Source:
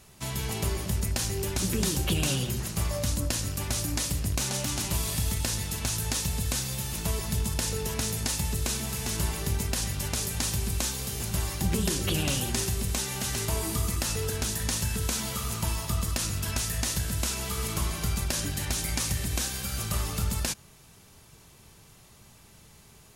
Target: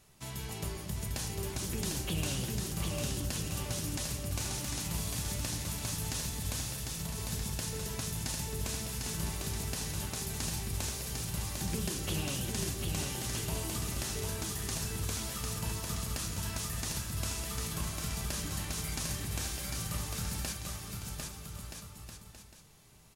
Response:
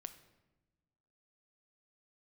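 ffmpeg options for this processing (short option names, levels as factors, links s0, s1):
-filter_complex "[0:a]asettb=1/sr,asplit=3[s0][s1][s2];[s0]atrim=end=6.674[s3];[s1]atrim=start=6.67:end=7.18,asetpts=PTS-STARTPTS,afade=t=in:d=0.004:c=qsin,afade=t=out:st=0.506:d=0.004:c=qsin,acompressor=threshold=0.0316:ratio=6[s4];[s2]atrim=start=7.176[s5];[s3][s4]acrossfade=d=0.004:c1=hsin:c2=qsin[s6];[s6][s5]acrossfade=d=0.004:c1=qsin:c2=hsin,aecho=1:1:750|1275|1642|1900|2080:0.631|0.398|0.251|0.158|0.1[s7];[1:a]atrim=start_sample=2205,atrim=end_sample=3087[s8];[s7][s8]afir=irnorm=-1:irlink=0,volume=0.668"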